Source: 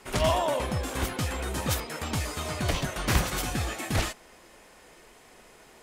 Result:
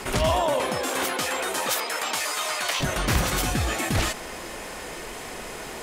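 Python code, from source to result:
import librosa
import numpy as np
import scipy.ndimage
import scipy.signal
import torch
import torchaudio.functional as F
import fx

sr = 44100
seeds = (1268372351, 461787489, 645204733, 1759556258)

y = fx.highpass(x, sr, hz=fx.line((0.59, 280.0), (2.79, 960.0)), slope=12, at=(0.59, 2.79), fade=0.02)
y = fx.env_flatten(y, sr, amount_pct=50)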